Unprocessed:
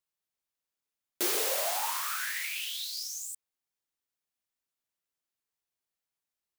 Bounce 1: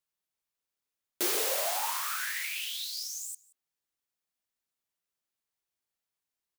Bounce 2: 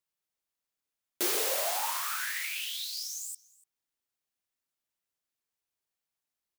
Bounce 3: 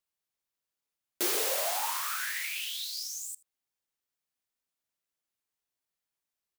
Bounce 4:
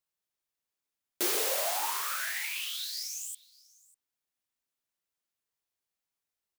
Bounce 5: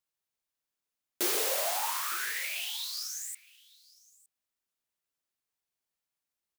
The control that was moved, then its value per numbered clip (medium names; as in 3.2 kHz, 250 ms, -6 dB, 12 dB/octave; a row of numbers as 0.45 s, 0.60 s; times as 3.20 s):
delay, time: 177 ms, 291 ms, 79 ms, 596 ms, 912 ms